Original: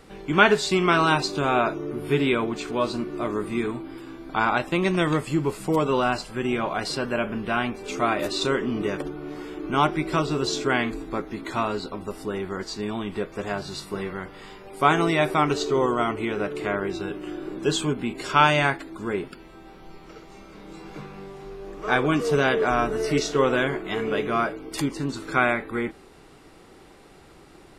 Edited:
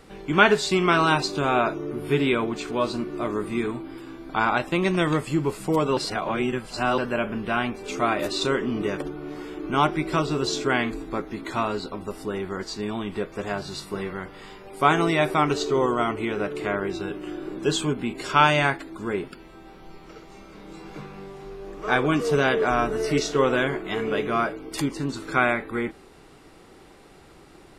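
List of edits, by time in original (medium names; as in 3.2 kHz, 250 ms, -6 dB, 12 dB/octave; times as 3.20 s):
5.97–6.98 s: reverse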